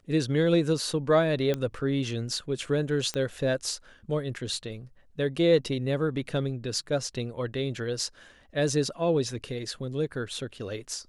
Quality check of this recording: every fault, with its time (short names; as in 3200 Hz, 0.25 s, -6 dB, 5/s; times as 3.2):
1.54 pop -16 dBFS
3.14 pop -17 dBFS